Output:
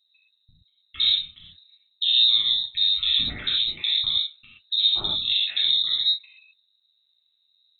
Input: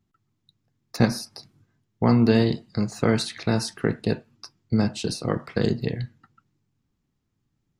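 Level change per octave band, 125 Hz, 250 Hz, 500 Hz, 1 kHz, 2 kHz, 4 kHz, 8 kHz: -23.0 dB, -26.5 dB, under -25 dB, under -10 dB, -3.0 dB, +18.5 dB, under -40 dB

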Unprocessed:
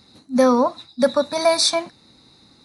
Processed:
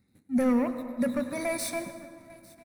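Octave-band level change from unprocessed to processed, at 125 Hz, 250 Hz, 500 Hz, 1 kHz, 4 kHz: n/a, -4.5 dB, -13.0 dB, -15.0 dB, -22.0 dB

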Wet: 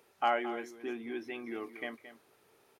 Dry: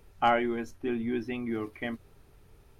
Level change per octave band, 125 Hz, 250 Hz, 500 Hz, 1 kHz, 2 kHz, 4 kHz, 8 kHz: -20.0 dB, -9.5 dB, -5.5 dB, -4.5 dB, -4.0 dB, -4.0 dB, n/a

